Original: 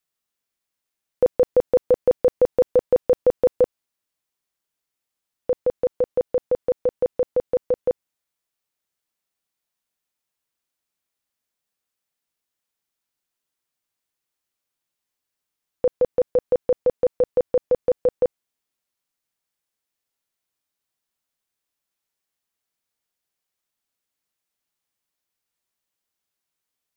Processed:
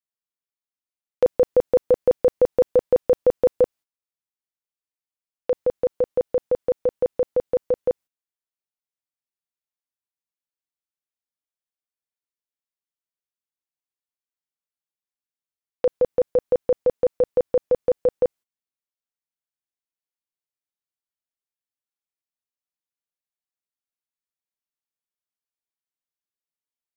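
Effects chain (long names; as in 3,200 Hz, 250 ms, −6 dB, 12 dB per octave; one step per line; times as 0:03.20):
noise gate −40 dBFS, range −15 dB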